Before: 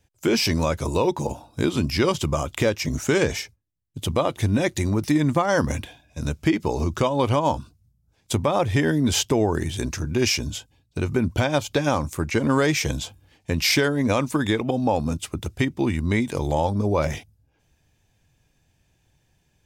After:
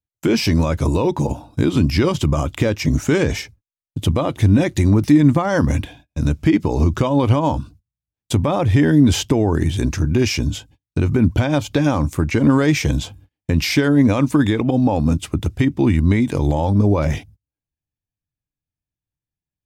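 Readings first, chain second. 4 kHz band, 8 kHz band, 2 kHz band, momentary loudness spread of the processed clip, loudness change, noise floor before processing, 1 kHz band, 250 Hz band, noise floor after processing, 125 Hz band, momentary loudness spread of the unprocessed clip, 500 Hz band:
0.0 dB, −1.0 dB, +1.0 dB, 9 LU, +5.5 dB, −67 dBFS, +1.0 dB, +7.5 dB, below −85 dBFS, +8.5 dB, 10 LU, +2.0 dB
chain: brickwall limiter −14 dBFS, peak gain reduction 4.5 dB
parametric band 290 Hz +6 dB 0.23 octaves
noise gate −50 dBFS, range −34 dB
bass and treble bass +6 dB, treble −4 dB
level +4 dB

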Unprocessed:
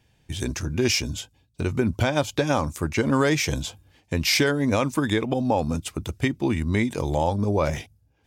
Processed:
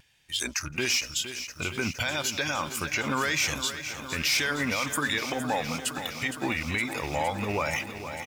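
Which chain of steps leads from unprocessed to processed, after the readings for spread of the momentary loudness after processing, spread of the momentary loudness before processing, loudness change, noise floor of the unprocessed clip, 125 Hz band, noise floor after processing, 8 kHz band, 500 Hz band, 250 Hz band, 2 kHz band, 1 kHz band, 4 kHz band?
7 LU, 10 LU, −4.0 dB, −65 dBFS, −11.5 dB, −45 dBFS, +1.5 dB, −9.0 dB, −9.5 dB, +1.5 dB, −3.0 dB, +0.5 dB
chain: loose part that buzzes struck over −21 dBFS, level −30 dBFS
tilt shelving filter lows −8.5 dB, about 1,300 Hz
leveller curve on the samples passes 2
single-tap delay 164 ms −23.5 dB
upward compression, threshold −31 dBFS
noise reduction from a noise print of the clip's start 13 dB
parametric band 1,800 Hz +6 dB 1.9 octaves
brickwall limiter −10.5 dBFS, peak gain reduction 11.5 dB
pitch vibrato 1.2 Hz 33 cents
feedback echo at a low word length 463 ms, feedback 80%, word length 7 bits, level −10.5 dB
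level −7.5 dB

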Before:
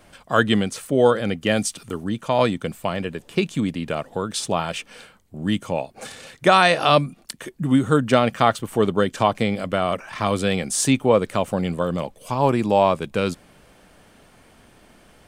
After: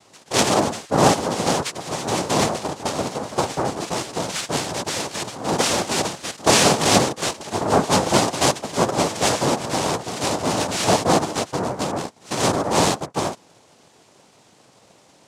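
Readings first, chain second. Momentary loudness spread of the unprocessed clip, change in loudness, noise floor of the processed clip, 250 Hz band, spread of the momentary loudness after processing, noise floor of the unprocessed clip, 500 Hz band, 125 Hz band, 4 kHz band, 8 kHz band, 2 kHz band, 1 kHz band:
12 LU, +0.5 dB, −54 dBFS, −1.5 dB, 9 LU, −53 dBFS, −1.0 dB, −1.0 dB, +5.0 dB, +8.5 dB, −0.5 dB, +1.0 dB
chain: delay with pitch and tempo change per echo 146 ms, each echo +3 semitones, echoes 3, each echo −6 dB
cochlear-implant simulation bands 2
level −1 dB

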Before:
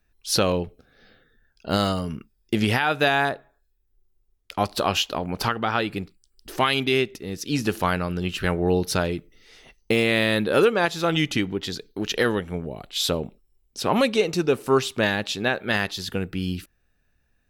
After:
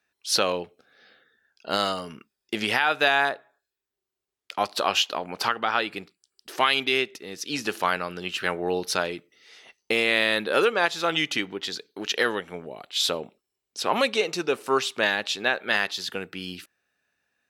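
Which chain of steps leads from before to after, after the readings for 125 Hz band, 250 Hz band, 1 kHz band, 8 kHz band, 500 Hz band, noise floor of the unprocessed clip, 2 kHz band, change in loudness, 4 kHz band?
−14.5 dB, −8.5 dB, 0.0 dB, −0.5 dB, −3.5 dB, −69 dBFS, +1.0 dB, −1.5 dB, +1.0 dB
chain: meter weighting curve A

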